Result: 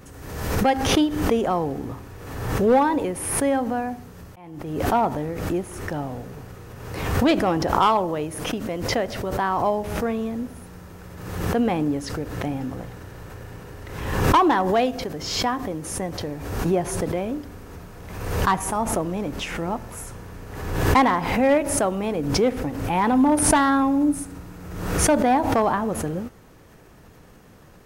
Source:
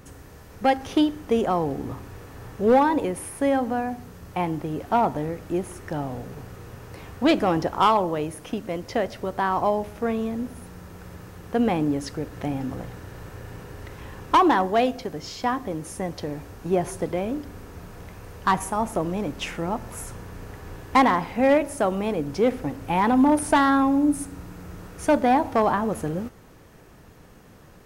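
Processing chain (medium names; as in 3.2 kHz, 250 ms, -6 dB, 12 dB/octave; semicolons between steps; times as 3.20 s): 4.28–4.80 s: slow attack 794 ms; swell ahead of each attack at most 48 dB/s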